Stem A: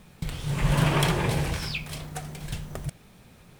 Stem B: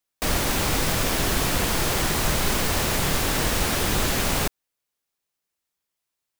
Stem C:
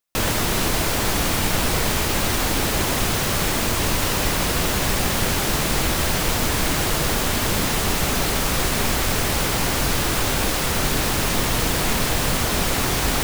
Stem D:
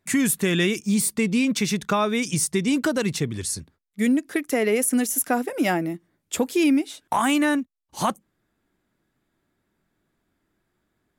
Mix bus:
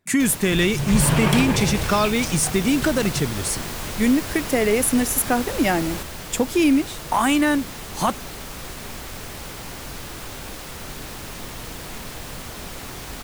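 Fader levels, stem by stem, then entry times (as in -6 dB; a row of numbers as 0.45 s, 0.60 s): +2.5 dB, -9.0 dB, -13.5 dB, +2.0 dB; 0.30 s, 1.55 s, 0.05 s, 0.00 s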